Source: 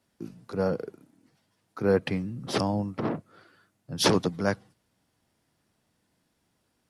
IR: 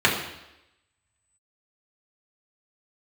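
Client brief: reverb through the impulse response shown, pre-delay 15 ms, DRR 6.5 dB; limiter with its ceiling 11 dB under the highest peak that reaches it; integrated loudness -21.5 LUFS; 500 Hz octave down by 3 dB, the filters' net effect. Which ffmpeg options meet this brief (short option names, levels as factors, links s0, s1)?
-filter_complex "[0:a]equalizer=f=500:t=o:g=-3.5,alimiter=limit=0.112:level=0:latency=1,asplit=2[s0][s1];[1:a]atrim=start_sample=2205,adelay=15[s2];[s1][s2]afir=irnorm=-1:irlink=0,volume=0.0501[s3];[s0][s3]amix=inputs=2:normalize=0,volume=3.16"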